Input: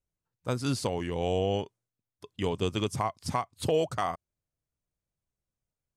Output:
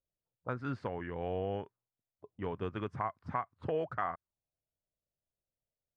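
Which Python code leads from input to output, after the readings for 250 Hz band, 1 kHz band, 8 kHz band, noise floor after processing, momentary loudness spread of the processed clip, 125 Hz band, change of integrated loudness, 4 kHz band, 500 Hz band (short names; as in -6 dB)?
-8.5 dB, -5.0 dB, under -35 dB, under -85 dBFS, 8 LU, -8.5 dB, -7.5 dB, -19.0 dB, -7.5 dB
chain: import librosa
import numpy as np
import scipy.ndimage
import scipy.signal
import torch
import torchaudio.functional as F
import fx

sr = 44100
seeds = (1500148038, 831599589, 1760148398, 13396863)

y = fx.envelope_lowpass(x, sr, base_hz=630.0, top_hz=1600.0, q=3.0, full_db=-30.0, direction='up')
y = y * 10.0 ** (-8.5 / 20.0)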